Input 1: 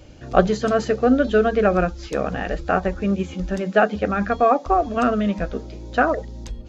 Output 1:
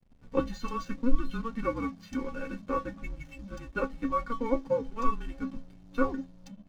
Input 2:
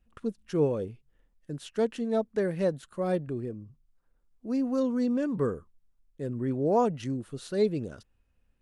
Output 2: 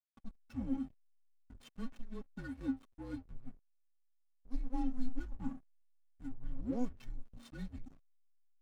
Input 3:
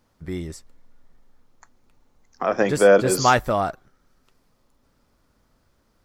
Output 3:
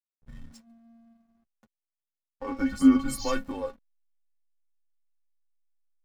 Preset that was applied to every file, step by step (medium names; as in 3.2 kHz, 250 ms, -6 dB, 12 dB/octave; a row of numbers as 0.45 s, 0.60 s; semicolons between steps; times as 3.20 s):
inharmonic resonator 250 Hz, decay 0.2 s, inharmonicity 0.008; frequency shift -240 Hz; hysteresis with a dead band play -49.5 dBFS; trim +2 dB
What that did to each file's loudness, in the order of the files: -13.0 LU, -14.0 LU, -6.0 LU